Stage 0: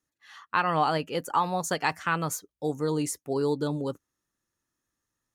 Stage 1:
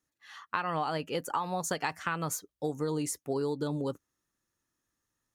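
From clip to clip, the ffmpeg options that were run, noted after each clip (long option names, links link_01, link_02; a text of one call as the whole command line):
ffmpeg -i in.wav -af "acompressor=threshold=-28dB:ratio=6" out.wav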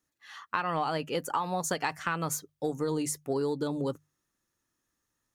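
ffmpeg -i in.wav -filter_complex "[0:a]bandreject=frequency=50:width_type=h:width=6,bandreject=frequency=100:width_type=h:width=6,bandreject=frequency=150:width_type=h:width=6,asplit=2[link_01][link_02];[link_02]asoftclip=type=tanh:threshold=-25dB,volume=-11.5dB[link_03];[link_01][link_03]amix=inputs=2:normalize=0" out.wav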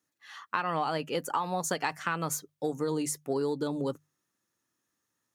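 ffmpeg -i in.wav -af "highpass=120" out.wav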